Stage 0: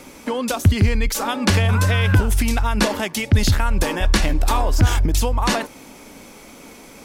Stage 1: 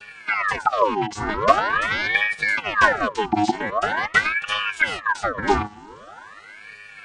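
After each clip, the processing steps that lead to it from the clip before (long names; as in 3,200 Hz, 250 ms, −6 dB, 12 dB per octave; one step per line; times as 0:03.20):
channel vocoder with a chord as carrier bare fifth, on G#3
ring modulator whose carrier an LFO sweeps 1,300 Hz, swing 60%, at 0.44 Hz
level +4 dB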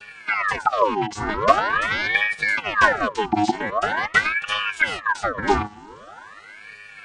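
no processing that can be heard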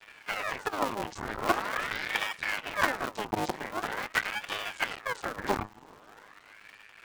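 sub-harmonics by changed cycles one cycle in 2, muted
level −8 dB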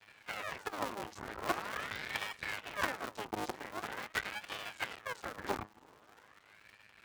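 gain on one half-wave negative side −7 dB
high-pass filter 51 Hz
level −5.5 dB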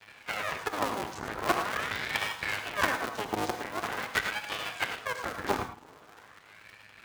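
reverb whose tail is shaped and stops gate 130 ms rising, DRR 7.5 dB
level +7 dB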